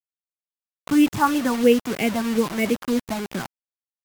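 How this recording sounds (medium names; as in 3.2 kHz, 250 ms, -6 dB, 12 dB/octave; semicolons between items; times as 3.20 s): phasing stages 4, 3.1 Hz, lowest notch 420–1100 Hz; a quantiser's noise floor 6-bit, dither none; MP3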